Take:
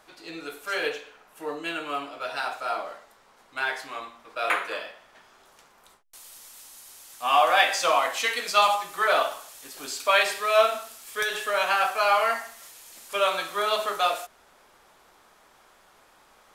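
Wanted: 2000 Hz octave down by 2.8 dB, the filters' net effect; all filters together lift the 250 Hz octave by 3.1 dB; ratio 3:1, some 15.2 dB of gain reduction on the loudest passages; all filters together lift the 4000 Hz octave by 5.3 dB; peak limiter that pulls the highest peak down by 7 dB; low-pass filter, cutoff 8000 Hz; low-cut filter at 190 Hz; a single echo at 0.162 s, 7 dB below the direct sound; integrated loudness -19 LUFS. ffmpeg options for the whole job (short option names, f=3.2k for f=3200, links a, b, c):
-af "highpass=190,lowpass=8k,equalizer=f=250:t=o:g=5.5,equalizer=f=2k:t=o:g=-6.5,equalizer=f=4k:t=o:g=9,acompressor=threshold=-36dB:ratio=3,alimiter=level_in=3.5dB:limit=-24dB:level=0:latency=1,volume=-3.5dB,aecho=1:1:162:0.447,volume=18.5dB"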